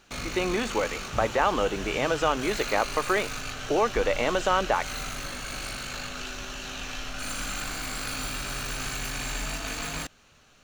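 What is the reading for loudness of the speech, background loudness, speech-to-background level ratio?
-27.0 LUFS, -33.5 LUFS, 6.5 dB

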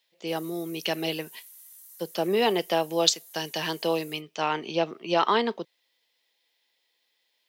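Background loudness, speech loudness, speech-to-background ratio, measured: -47.0 LUFS, -27.5 LUFS, 19.5 dB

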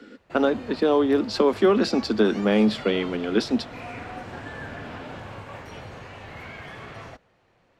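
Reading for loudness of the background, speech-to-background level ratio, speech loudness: -39.5 LUFS, 17.0 dB, -22.5 LUFS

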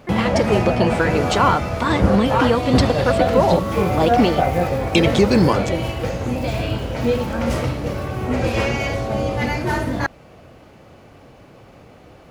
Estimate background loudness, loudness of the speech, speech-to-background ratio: -21.0 LUFS, -20.0 LUFS, 1.0 dB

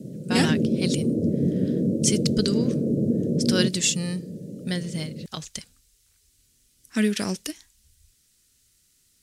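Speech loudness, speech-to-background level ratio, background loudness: -27.0 LUFS, -2.5 dB, -24.5 LUFS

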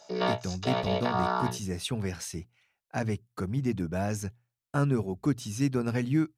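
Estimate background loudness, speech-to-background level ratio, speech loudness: -30.5 LUFS, -1.5 dB, -32.0 LUFS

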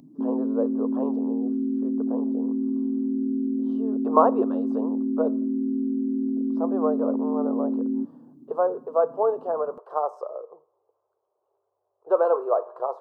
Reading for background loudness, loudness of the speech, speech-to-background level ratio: -26.5 LUFS, -27.0 LUFS, -0.5 dB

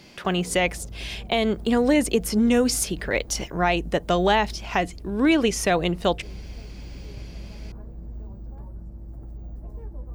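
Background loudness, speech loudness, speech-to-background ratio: -40.5 LUFS, -23.0 LUFS, 17.5 dB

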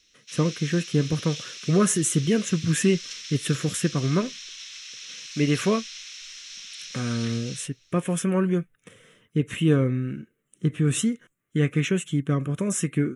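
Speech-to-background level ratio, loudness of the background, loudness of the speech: 11.5 dB, -37.0 LUFS, -25.5 LUFS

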